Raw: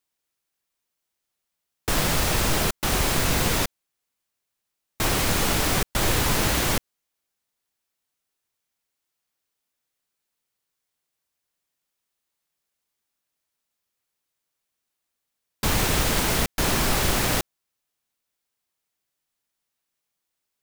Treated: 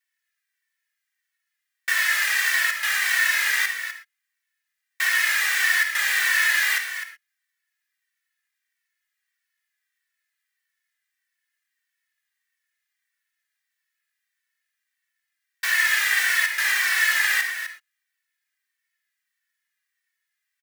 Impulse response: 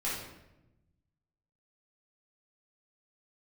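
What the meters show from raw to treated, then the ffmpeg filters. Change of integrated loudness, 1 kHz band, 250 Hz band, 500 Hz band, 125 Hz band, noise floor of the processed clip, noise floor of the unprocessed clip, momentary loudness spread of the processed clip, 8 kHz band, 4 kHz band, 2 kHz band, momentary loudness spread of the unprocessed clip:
+2.5 dB, -6.0 dB, under -30 dB, under -20 dB, under -40 dB, -82 dBFS, -82 dBFS, 11 LU, -1.5 dB, +0.5 dB, +11.0 dB, 6 LU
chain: -filter_complex "[0:a]highpass=f=1800:t=q:w=8.3,aecho=1:1:253:0.316,asplit=2[s0][s1];[1:a]atrim=start_sample=2205,afade=t=out:st=0.13:d=0.01,atrim=end_sample=6174,adelay=51[s2];[s1][s2]afir=irnorm=-1:irlink=0,volume=0.251[s3];[s0][s3]amix=inputs=2:normalize=0,asplit=2[s4][s5];[s5]adelay=2.2,afreqshift=-1.6[s6];[s4][s6]amix=inputs=2:normalize=1"

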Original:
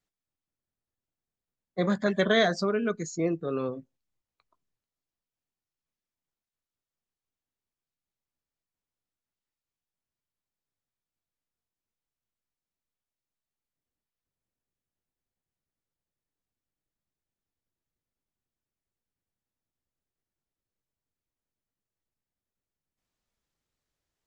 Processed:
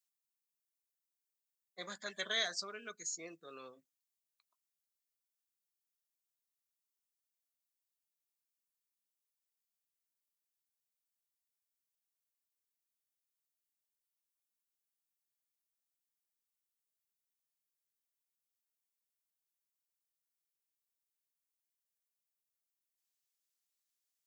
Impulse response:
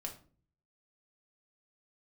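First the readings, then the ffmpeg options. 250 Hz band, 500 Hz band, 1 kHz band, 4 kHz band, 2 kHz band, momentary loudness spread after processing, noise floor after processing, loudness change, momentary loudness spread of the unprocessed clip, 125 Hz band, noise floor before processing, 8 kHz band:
-27.5 dB, -21.0 dB, -16.0 dB, -4.5 dB, -10.5 dB, 19 LU, under -85 dBFS, -12.5 dB, 12 LU, -30.5 dB, under -85 dBFS, no reading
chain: -af "aderivative,volume=1.19"

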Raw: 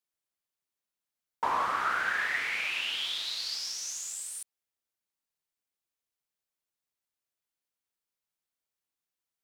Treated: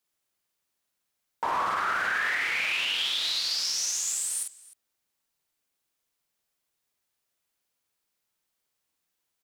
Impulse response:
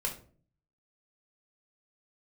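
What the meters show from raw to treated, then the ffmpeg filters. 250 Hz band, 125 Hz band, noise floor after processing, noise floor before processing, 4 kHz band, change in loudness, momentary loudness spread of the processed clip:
+2.5 dB, no reading, -81 dBFS, under -85 dBFS, +5.5 dB, +4.0 dB, 5 LU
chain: -filter_complex "[0:a]acompressor=threshold=0.0224:ratio=3,asplit=2[s0][s1];[s1]aecho=0:1:49|305:0.668|0.106[s2];[s0][s2]amix=inputs=2:normalize=0,alimiter=level_in=1.41:limit=0.0631:level=0:latency=1:release=11,volume=0.708,volume=2.37"

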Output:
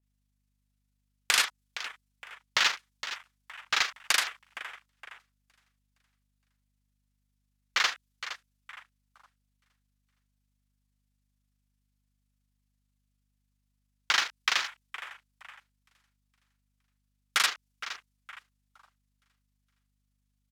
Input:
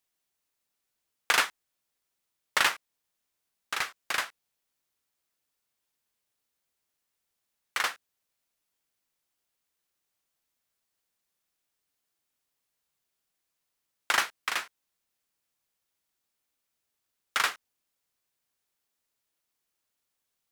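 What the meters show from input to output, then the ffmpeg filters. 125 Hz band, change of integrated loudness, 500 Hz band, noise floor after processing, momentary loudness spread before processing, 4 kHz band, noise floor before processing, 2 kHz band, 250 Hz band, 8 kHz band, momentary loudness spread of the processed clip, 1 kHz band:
no reading, +0.5 dB, -4.5 dB, -77 dBFS, 12 LU, +4.5 dB, -83 dBFS, +0.5 dB, -4.5 dB, +3.5 dB, 18 LU, -1.5 dB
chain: -filter_complex "[0:a]aemphasis=mode=reproduction:type=75fm,acrossover=split=290|1600|4600[s0][s1][s2][s3];[s1]asoftclip=type=hard:threshold=0.0473[s4];[s0][s4][s2][s3]amix=inputs=4:normalize=0,tremolo=f=27:d=0.519,acompressor=threshold=0.0158:ratio=6,asoftclip=type=tanh:threshold=0.0376,aecho=1:1:465|930|1395|1860|2325:0.251|0.116|0.0532|0.0244|0.0112,afwtdn=0.000891,acontrast=50,aeval=exprs='val(0)+0.000158*(sin(2*PI*50*n/s)+sin(2*PI*2*50*n/s)/2+sin(2*PI*3*50*n/s)/3+sin(2*PI*4*50*n/s)/4+sin(2*PI*5*50*n/s)/5)':c=same,crystalizer=i=7.5:c=0,adynamicequalizer=threshold=0.00891:dfrequency=3000:dqfactor=0.7:tfrequency=3000:tqfactor=0.7:attack=5:release=100:ratio=0.375:range=2.5:mode=boostabove:tftype=highshelf"

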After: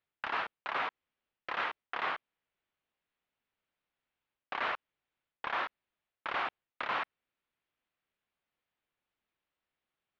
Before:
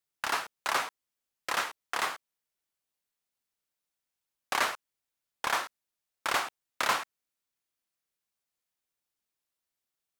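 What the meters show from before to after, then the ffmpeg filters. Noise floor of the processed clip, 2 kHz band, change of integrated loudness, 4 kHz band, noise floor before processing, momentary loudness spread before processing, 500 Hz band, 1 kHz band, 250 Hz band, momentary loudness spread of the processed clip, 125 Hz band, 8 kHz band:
under -85 dBFS, -4.0 dB, -5.0 dB, -8.5 dB, under -85 dBFS, 12 LU, -4.0 dB, -3.5 dB, -4.0 dB, 7 LU, -4.5 dB, under -30 dB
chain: -af "lowpass=f=3200:w=0.5412,lowpass=f=3200:w=1.3066,areverse,acompressor=threshold=0.0158:ratio=10,areverse,volume=1.78"

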